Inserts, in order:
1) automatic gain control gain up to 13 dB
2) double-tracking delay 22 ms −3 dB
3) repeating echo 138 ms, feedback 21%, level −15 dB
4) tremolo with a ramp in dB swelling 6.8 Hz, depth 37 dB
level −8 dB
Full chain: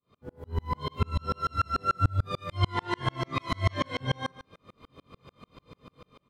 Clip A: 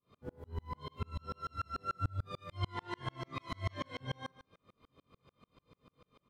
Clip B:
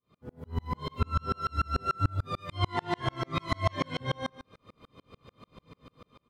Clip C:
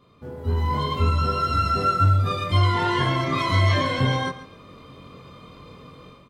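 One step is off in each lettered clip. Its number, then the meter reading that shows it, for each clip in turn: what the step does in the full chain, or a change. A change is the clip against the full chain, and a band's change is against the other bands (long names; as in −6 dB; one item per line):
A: 1, change in integrated loudness −11.5 LU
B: 2, 500 Hz band +1.5 dB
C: 4, change in integrated loudness +9.0 LU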